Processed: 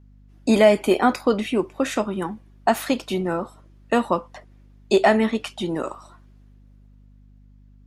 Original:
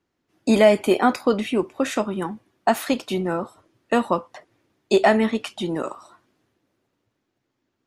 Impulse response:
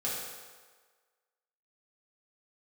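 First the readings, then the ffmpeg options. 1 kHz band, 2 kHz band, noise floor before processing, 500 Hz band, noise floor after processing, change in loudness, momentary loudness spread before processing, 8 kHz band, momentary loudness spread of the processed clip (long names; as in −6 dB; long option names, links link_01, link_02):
0.0 dB, 0.0 dB, −77 dBFS, 0.0 dB, −50 dBFS, 0.0 dB, 13 LU, 0.0 dB, 13 LU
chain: -af "aeval=exprs='val(0)+0.00355*(sin(2*PI*50*n/s)+sin(2*PI*2*50*n/s)/2+sin(2*PI*3*50*n/s)/3+sin(2*PI*4*50*n/s)/4+sin(2*PI*5*50*n/s)/5)':channel_layout=same"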